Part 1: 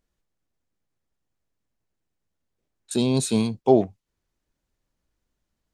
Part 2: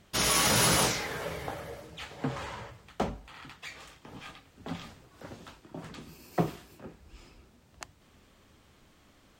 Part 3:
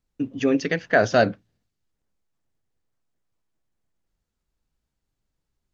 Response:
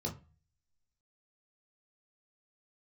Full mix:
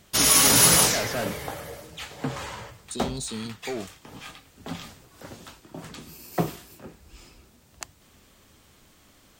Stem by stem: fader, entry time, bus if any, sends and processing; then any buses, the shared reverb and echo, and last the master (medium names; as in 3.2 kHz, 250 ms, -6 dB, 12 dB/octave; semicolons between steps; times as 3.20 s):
-8.0 dB, 0.00 s, bus A, no send, high-order bell 5.3 kHz +9 dB
+2.5 dB, 0.00 s, no bus, no send, treble shelf 5.5 kHz +11 dB
0.0 dB, 0.00 s, bus A, no send, none
bus A: 0.0 dB, saturation -21.5 dBFS, distortion -6 dB; peak limiter -26 dBFS, peak gain reduction 4.5 dB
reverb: none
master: none